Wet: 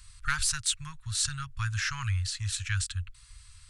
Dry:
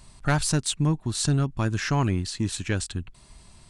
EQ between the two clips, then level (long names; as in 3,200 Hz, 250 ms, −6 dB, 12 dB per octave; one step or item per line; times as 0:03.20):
elliptic band-stop filter 100–1,300 Hz, stop band 40 dB
0.0 dB